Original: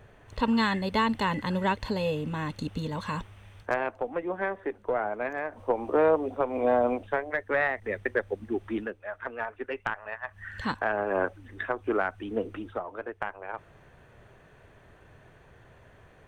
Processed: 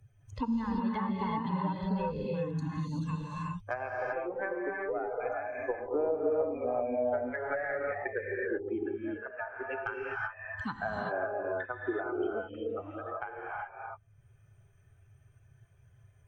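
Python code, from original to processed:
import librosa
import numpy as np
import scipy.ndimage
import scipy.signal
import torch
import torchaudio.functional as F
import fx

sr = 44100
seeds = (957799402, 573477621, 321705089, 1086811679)

y = fx.bin_expand(x, sr, power=2.0)
y = fx.env_lowpass_down(y, sr, base_hz=820.0, full_db=-27.0)
y = fx.rev_gated(y, sr, seeds[0], gate_ms=410, shape='rising', drr_db=-2.5)
y = fx.band_squash(y, sr, depth_pct=70)
y = y * 10.0 ** (-3.0 / 20.0)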